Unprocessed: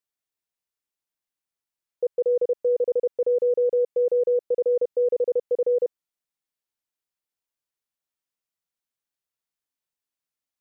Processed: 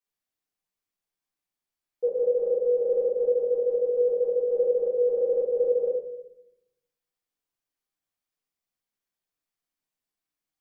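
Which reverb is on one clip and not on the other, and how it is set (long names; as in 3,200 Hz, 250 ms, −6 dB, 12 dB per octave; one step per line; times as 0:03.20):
rectangular room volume 230 cubic metres, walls mixed, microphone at 3.7 metres
level −10 dB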